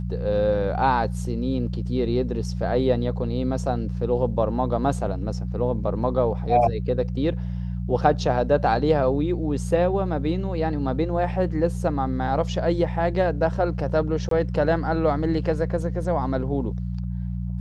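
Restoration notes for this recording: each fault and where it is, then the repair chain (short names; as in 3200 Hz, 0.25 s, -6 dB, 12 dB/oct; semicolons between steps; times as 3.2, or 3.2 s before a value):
hum 60 Hz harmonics 3 -28 dBFS
14.29–14.31 gap 23 ms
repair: de-hum 60 Hz, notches 3; interpolate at 14.29, 23 ms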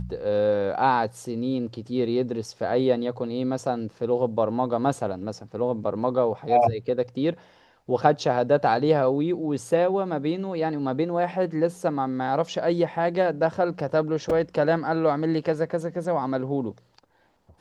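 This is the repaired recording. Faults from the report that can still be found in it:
none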